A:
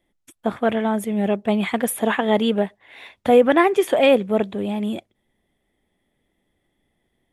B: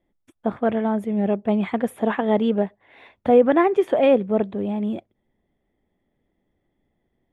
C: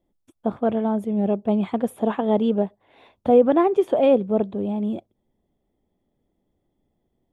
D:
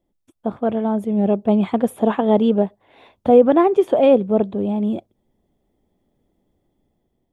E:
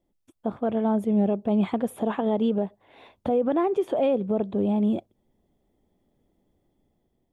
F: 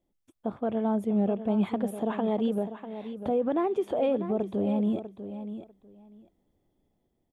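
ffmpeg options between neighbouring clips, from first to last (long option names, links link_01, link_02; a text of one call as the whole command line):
ffmpeg -i in.wav -af "lowpass=frequency=1000:poles=1" out.wav
ffmpeg -i in.wav -af "equalizer=frequency=1900:width_type=o:width=0.82:gain=-11" out.wav
ffmpeg -i in.wav -af "dynaudnorm=framelen=400:gausssize=5:maxgain=5.5dB" out.wav
ffmpeg -i in.wav -af "alimiter=limit=-13.5dB:level=0:latency=1:release=131,volume=-2dB" out.wav
ffmpeg -i in.wav -af "aecho=1:1:646|1292:0.282|0.0479,volume=-3.5dB" out.wav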